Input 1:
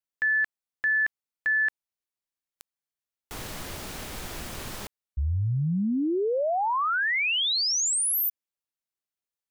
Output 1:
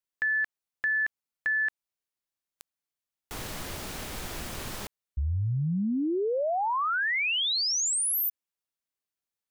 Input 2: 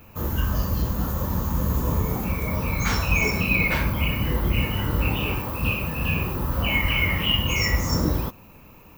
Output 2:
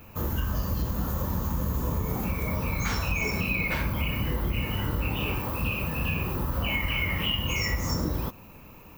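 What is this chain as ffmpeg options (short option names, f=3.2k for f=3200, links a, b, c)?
-af "acompressor=threshold=-24dB:ratio=6:attack=18:release=199:knee=6"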